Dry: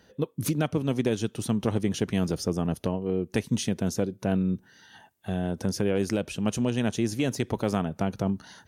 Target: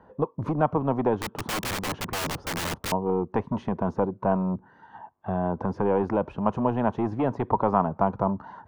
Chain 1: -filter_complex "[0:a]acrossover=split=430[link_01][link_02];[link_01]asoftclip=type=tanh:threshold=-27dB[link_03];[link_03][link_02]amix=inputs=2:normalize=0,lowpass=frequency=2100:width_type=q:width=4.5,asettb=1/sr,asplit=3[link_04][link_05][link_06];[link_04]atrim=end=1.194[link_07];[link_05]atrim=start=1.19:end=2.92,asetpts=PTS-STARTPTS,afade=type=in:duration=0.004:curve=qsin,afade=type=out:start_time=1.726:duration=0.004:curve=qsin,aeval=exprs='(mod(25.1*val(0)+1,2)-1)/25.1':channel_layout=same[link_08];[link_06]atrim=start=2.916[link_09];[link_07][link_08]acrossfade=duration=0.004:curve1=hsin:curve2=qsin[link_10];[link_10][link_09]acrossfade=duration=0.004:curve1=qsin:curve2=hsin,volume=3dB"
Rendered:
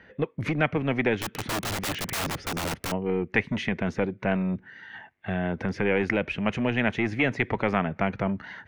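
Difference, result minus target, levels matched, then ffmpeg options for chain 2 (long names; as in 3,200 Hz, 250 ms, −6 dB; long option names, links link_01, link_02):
2,000 Hz band +9.5 dB
-filter_complex "[0:a]acrossover=split=430[link_01][link_02];[link_01]asoftclip=type=tanh:threshold=-27dB[link_03];[link_03][link_02]amix=inputs=2:normalize=0,lowpass=frequency=1000:width_type=q:width=4.5,asettb=1/sr,asplit=3[link_04][link_05][link_06];[link_04]atrim=end=1.194[link_07];[link_05]atrim=start=1.19:end=2.92,asetpts=PTS-STARTPTS,afade=type=in:duration=0.004:curve=qsin,afade=type=out:start_time=1.726:duration=0.004:curve=qsin,aeval=exprs='(mod(25.1*val(0)+1,2)-1)/25.1':channel_layout=same[link_08];[link_06]atrim=start=2.916[link_09];[link_07][link_08]acrossfade=duration=0.004:curve1=hsin:curve2=qsin[link_10];[link_10][link_09]acrossfade=duration=0.004:curve1=qsin:curve2=hsin,volume=3dB"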